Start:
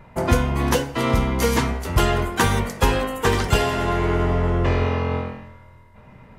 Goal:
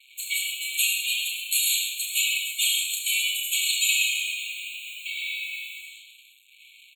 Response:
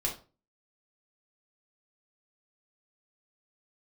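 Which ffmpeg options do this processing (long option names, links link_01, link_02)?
-filter_complex "[0:a]alimiter=limit=-11.5dB:level=0:latency=1:release=31,aecho=1:1:30|69|119.7|185.6|271.3:0.631|0.398|0.251|0.158|0.1,acontrast=89,flanger=delay=5.7:depth=5.2:regen=-3:speed=0.86:shape=sinusoidal,asplit=2[link_01][link_02];[1:a]atrim=start_sample=2205,adelay=92[link_03];[link_02][link_03]afir=irnorm=-1:irlink=0,volume=-11dB[link_04];[link_01][link_04]amix=inputs=2:normalize=0,asetrate=40517,aresample=44100,highshelf=frequency=4900:gain=12,acrusher=bits=5:mix=0:aa=0.5,afftfilt=real='re*eq(mod(floor(b*sr/1024/2200),2),1)':imag='im*eq(mod(floor(b*sr/1024/2200),2),1)':win_size=1024:overlap=0.75"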